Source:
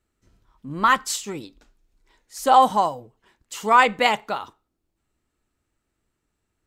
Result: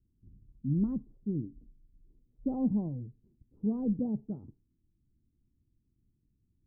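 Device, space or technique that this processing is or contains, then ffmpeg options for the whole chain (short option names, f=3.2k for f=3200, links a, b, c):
the neighbour's flat through the wall: -filter_complex "[0:a]asettb=1/sr,asplit=3[a][b][c];[a]atrim=end=3.664[d];[b]atrim=start=3.66:end=4.27,asetpts=PTS-STARTPTS,afade=t=in:d=0.004:c=qsin,afade=t=out:st=0.606:d=0.004:c=qsin,lowpass=1.1k[e];[c]atrim=start=4.266[f];[d][e]acrossfade=d=0.004:c1=hsin:c2=qsin[g];[g][f]acrossfade=d=0.004:c1=qsin:c2=hsin,lowpass=f=270:w=0.5412,lowpass=f=270:w=1.3066,equalizer=f=120:t=o:w=0.77:g=4.5,volume=3.5dB"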